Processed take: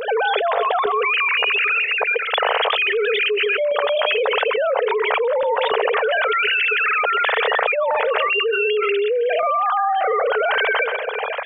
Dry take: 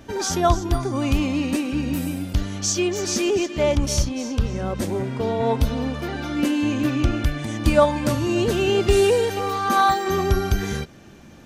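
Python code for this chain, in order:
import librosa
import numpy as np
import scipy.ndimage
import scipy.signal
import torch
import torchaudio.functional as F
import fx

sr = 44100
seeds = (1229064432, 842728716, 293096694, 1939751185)

y = fx.sine_speech(x, sr)
y = fx.brickwall_highpass(y, sr, low_hz=420.0)
y = fx.tremolo_random(y, sr, seeds[0], hz=3.5, depth_pct=70)
y = fx.echo_tape(y, sr, ms=131, feedback_pct=30, wet_db=-21.5, lp_hz=2500.0, drive_db=11.0, wow_cents=24)
y = fx.env_flatten(y, sr, amount_pct=100)
y = y * 10.0 ** (-5.5 / 20.0)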